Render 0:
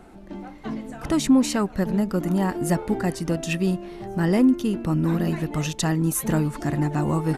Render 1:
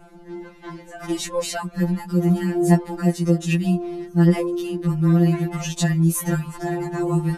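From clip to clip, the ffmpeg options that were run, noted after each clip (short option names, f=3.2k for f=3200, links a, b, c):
-af "afftfilt=real='re*2.83*eq(mod(b,8),0)':imag='im*2.83*eq(mod(b,8),0)':win_size=2048:overlap=0.75,volume=2.5dB"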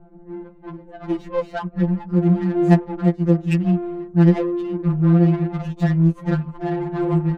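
-af "adynamicsmooth=sensitivity=1.5:basefreq=550,volume=2dB"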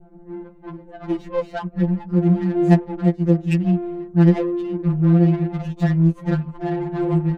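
-af "adynamicequalizer=threshold=0.00631:dfrequency=1200:dqfactor=1.9:tfrequency=1200:tqfactor=1.9:attack=5:release=100:ratio=0.375:range=2.5:mode=cutabove:tftype=bell"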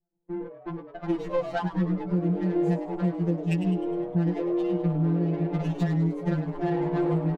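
-filter_complex "[0:a]agate=range=-37dB:threshold=-37dB:ratio=16:detection=peak,acompressor=threshold=-22dB:ratio=10,asplit=7[a][b][c][d][e][f][g];[b]adelay=102,afreqshift=130,volume=-11dB[h];[c]adelay=204,afreqshift=260,volume=-16.7dB[i];[d]adelay=306,afreqshift=390,volume=-22.4dB[j];[e]adelay=408,afreqshift=520,volume=-28dB[k];[f]adelay=510,afreqshift=650,volume=-33.7dB[l];[g]adelay=612,afreqshift=780,volume=-39.4dB[m];[a][h][i][j][k][l][m]amix=inputs=7:normalize=0"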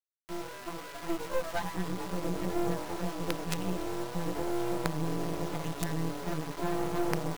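-af "aeval=exprs='val(0)+0.00794*sin(2*PI*990*n/s)':c=same,bass=f=250:g=-6,treble=f=4k:g=5,acrusher=bits=4:dc=4:mix=0:aa=0.000001"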